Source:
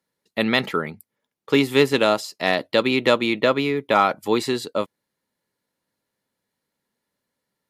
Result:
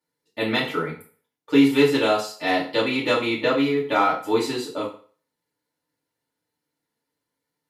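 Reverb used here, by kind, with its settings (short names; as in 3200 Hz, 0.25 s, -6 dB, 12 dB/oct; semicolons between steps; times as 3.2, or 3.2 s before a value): FDN reverb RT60 0.43 s, low-frequency decay 0.85×, high-frequency decay 0.9×, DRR -8 dB; gain -10.5 dB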